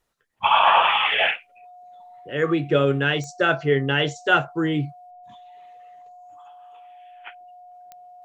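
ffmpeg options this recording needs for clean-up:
-af "adeclick=t=4,bandreject=f=720:w=30"

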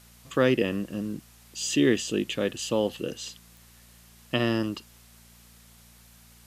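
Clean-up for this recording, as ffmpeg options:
-af "adeclick=t=4,bandreject=f=58.1:t=h:w=4,bandreject=f=116.2:t=h:w=4,bandreject=f=174.3:t=h:w=4,bandreject=f=232.4:t=h:w=4,afftdn=nr=17:nf=-54"

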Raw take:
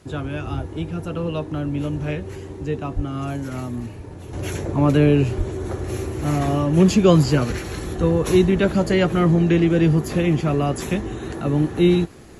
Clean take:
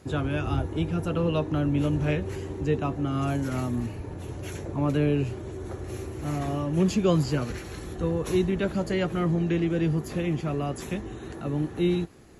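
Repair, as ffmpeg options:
-filter_complex "[0:a]asplit=3[s0][s1][s2];[s0]afade=t=out:st=2.95:d=0.02[s3];[s1]highpass=f=140:w=0.5412,highpass=f=140:w=1.3066,afade=t=in:st=2.95:d=0.02,afade=t=out:st=3.07:d=0.02[s4];[s2]afade=t=in:st=3.07:d=0.02[s5];[s3][s4][s5]amix=inputs=3:normalize=0,asplit=3[s6][s7][s8];[s6]afade=t=out:st=5.37:d=0.02[s9];[s7]highpass=f=140:w=0.5412,highpass=f=140:w=1.3066,afade=t=in:st=5.37:d=0.02,afade=t=out:st=5.49:d=0.02[s10];[s8]afade=t=in:st=5.49:d=0.02[s11];[s9][s10][s11]amix=inputs=3:normalize=0,agate=range=0.0891:threshold=0.0562,asetnsamples=n=441:p=0,asendcmd='4.33 volume volume -8.5dB',volume=1"

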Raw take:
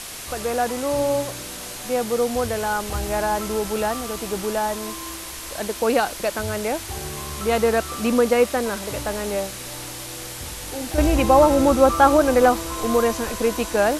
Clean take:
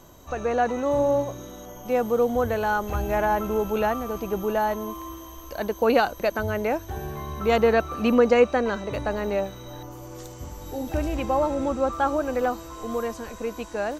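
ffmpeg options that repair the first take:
-af "afwtdn=0.022,asetnsamples=n=441:p=0,asendcmd='10.98 volume volume -9dB',volume=1"

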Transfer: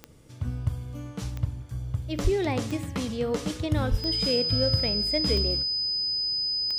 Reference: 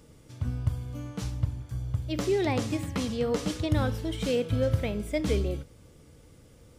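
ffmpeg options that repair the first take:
-filter_complex "[0:a]adeclick=t=4,bandreject=f=5000:w=30,asplit=3[s0][s1][s2];[s0]afade=t=out:st=2.23:d=0.02[s3];[s1]highpass=f=140:w=0.5412,highpass=f=140:w=1.3066,afade=t=in:st=2.23:d=0.02,afade=t=out:st=2.35:d=0.02[s4];[s2]afade=t=in:st=2.35:d=0.02[s5];[s3][s4][s5]amix=inputs=3:normalize=0,asplit=3[s6][s7][s8];[s6]afade=t=out:st=3.9:d=0.02[s9];[s7]highpass=f=140:w=0.5412,highpass=f=140:w=1.3066,afade=t=in:st=3.9:d=0.02,afade=t=out:st=4.02:d=0.02[s10];[s8]afade=t=in:st=4.02:d=0.02[s11];[s9][s10][s11]amix=inputs=3:normalize=0"

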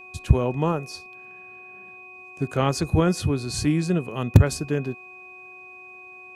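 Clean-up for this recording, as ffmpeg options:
-af "bandreject=f=368.1:t=h:w=4,bandreject=f=736.2:t=h:w=4,bandreject=f=1104.3:t=h:w=4,bandreject=f=2500:w=30"

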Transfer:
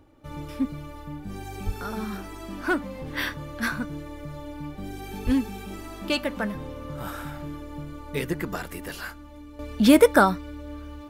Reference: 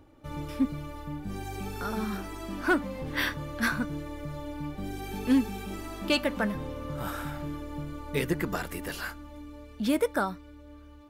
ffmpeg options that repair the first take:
-filter_complex "[0:a]asplit=3[s0][s1][s2];[s0]afade=t=out:st=1.65:d=0.02[s3];[s1]highpass=f=140:w=0.5412,highpass=f=140:w=1.3066,afade=t=in:st=1.65:d=0.02,afade=t=out:st=1.77:d=0.02[s4];[s2]afade=t=in:st=1.77:d=0.02[s5];[s3][s4][s5]amix=inputs=3:normalize=0,asplit=3[s6][s7][s8];[s6]afade=t=out:st=5.25:d=0.02[s9];[s7]highpass=f=140:w=0.5412,highpass=f=140:w=1.3066,afade=t=in:st=5.25:d=0.02,afade=t=out:st=5.37:d=0.02[s10];[s8]afade=t=in:st=5.37:d=0.02[s11];[s9][s10][s11]amix=inputs=3:normalize=0,asetnsamples=n=441:p=0,asendcmd='9.59 volume volume -11dB',volume=1"

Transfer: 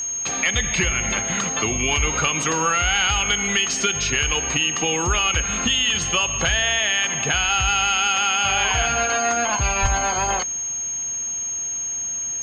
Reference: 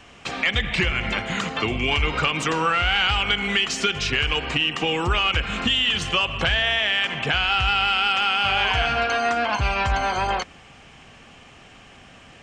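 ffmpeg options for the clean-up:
-filter_complex "[0:a]bandreject=f=6500:w=30,asplit=3[s0][s1][s2];[s0]afade=t=out:st=9.81:d=0.02[s3];[s1]highpass=f=140:w=0.5412,highpass=f=140:w=1.3066,afade=t=in:st=9.81:d=0.02,afade=t=out:st=9.93:d=0.02[s4];[s2]afade=t=in:st=9.93:d=0.02[s5];[s3][s4][s5]amix=inputs=3:normalize=0"

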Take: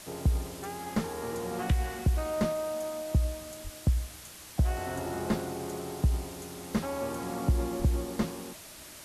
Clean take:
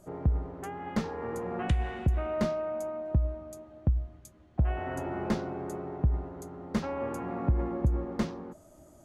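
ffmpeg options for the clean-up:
-filter_complex "[0:a]asplit=3[s0][s1][s2];[s0]afade=t=out:st=3.63:d=0.02[s3];[s1]highpass=f=140:w=0.5412,highpass=f=140:w=1.3066,afade=t=in:st=3.63:d=0.02,afade=t=out:st=3.75:d=0.02[s4];[s2]afade=t=in:st=3.75:d=0.02[s5];[s3][s4][s5]amix=inputs=3:normalize=0,asplit=3[s6][s7][s8];[s6]afade=t=out:st=7.78:d=0.02[s9];[s7]highpass=f=140:w=0.5412,highpass=f=140:w=1.3066,afade=t=in:st=7.78:d=0.02,afade=t=out:st=7.9:d=0.02[s10];[s8]afade=t=in:st=7.9:d=0.02[s11];[s9][s10][s11]amix=inputs=3:normalize=0,afwtdn=0.005"

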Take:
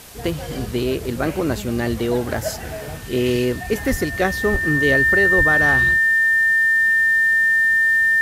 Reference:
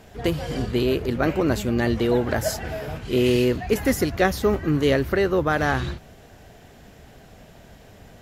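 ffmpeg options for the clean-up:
-filter_complex "[0:a]bandreject=f=1800:w=30,asplit=3[s0][s1][s2];[s0]afade=t=out:st=3.9:d=0.02[s3];[s1]highpass=f=140:w=0.5412,highpass=f=140:w=1.3066,afade=t=in:st=3.9:d=0.02,afade=t=out:st=4.02:d=0.02[s4];[s2]afade=t=in:st=4.02:d=0.02[s5];[s3][s4][s5]amix=inputs=3:normalize=0,asplit=3[s6][s7][s8];[s6]afade=t=out:st=4.51:d=0.02[s9];[s7]highpass=f=140:w=0.5412,highpass=f=140:w=1.3066,afade=t=in:st=4.51:d=0.02,afade=t=out:st=4.63:d=0.02[s10];[s8]afade=t=in:st=4.63:d=0.02[s11];[s9][s10][s11]amix=inputs=3:normalize=0,asplit=3[s12][s13][s14];[s12]afade=t=out:st=5.37:d=0.02[s15];[s13]highpass=f=140:w=0.5412,highpass=f=140:w=1.3066,afade=t=in:st=5.37:d=0.02,afade=t=out:st=5.49:d=0.02[s16];[s14]afade=t=in:st=5.49:d=0.02[s17];[s15][s16][s17]amix=inputs=3:normalize=0,afwtdn=0.0089"

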